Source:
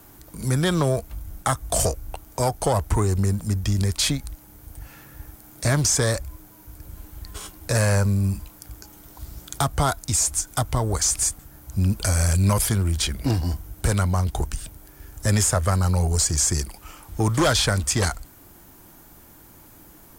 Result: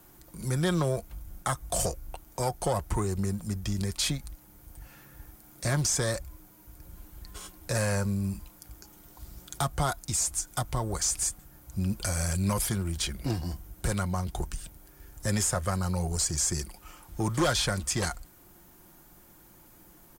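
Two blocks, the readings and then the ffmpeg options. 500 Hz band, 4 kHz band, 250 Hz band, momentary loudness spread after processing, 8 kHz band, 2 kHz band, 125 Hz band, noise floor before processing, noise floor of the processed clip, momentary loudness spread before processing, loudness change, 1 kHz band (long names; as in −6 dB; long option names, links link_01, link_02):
−6.5 dB, −6.5 dB, −5.5 dB, 20 LU, −6.5 dB, −6.5 dB, −9.0 dB, −49 dBFS, −56 dBFS, 19 LU, −7.0 dB, −6.5 dB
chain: -af "aecho=1:1:5.6:0.35,volume=-7dB"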